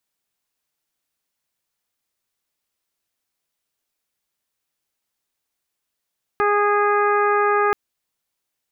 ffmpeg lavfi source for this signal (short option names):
-f lavfi -i "aevalsrc='0.112*sin(2*PI*412*t)+0.075*sin(2*PI*824*t)+0.106*sin(2*PI*1236*t)+0.0562*sin(2*PI*1648*t)+0.0266*sin(2*PI*2060*t)+0.015*sin(2*PI*2472*t)':d=1.33:s=44100"